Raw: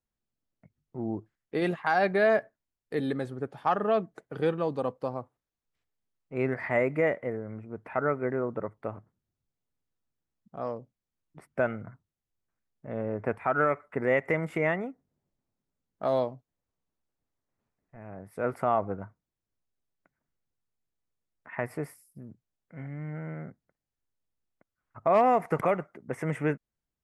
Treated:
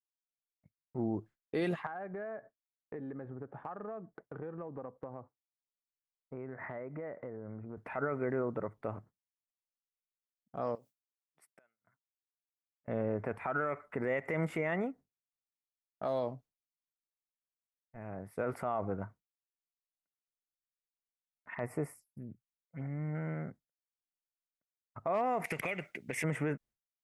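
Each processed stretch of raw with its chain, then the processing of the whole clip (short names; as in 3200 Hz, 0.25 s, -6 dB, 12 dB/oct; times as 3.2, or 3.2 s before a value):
1.86–7.77 LPF 1700 Hz 24 dB/oct + compressor 8:1, threshold -39 dBFS
10.75–12.88 flipped gate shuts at -26 dBFS, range -25 dB + tilt +4.5 dB/oct + compressor 2.5:1, threshold -55 dBFS
21.54–23.15 bell 1600 Hz -6 dB 0.21 oct + envelope phaser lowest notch 180 Hz, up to 3900 Hz, full sweep at -36 dBFS
25.44–26.24 resonant high shelf 1700 Hz +12 dB, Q 3 + compressor, threshold -32 dBFS
whole clip: expander -48 dBFS; limiter -24 dBFS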